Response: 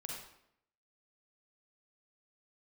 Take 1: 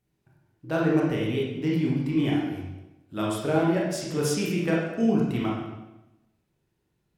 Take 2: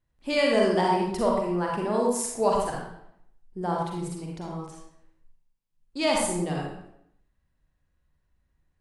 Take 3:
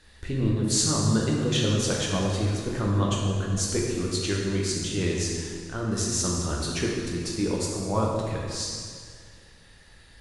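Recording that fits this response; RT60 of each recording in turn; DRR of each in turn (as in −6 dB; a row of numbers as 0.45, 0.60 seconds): 2; 1.0, 0.75, 2.0 seconds; −4.0, −2.0, −3.0 decibels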